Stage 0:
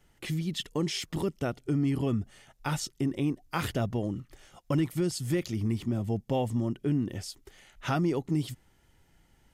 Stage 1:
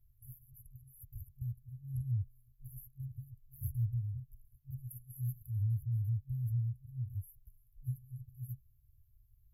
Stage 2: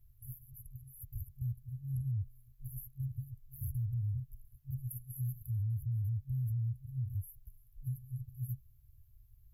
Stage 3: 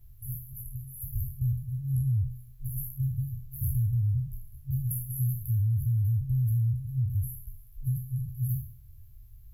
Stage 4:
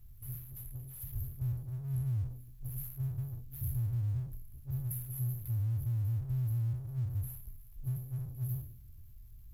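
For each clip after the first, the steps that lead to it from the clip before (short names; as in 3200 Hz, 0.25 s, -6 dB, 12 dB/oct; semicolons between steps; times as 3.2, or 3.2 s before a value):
FFT band-reject 130–11000 Hz
limiter -35 dBFS, peak gain reduction 9 dB; gain +5 dB
spectral trails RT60 0.55 s; gain +8.5 dB
G.711 law mismatch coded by mu; gain -7.5 dB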